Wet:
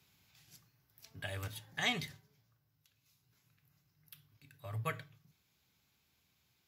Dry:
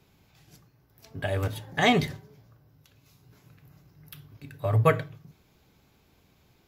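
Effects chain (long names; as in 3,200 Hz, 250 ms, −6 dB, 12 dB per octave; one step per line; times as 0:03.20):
high-pass filter 78 Hz
guitar amp tone stack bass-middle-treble 5-5-5
speech leveller within 4 dB 2 s
level +1 dB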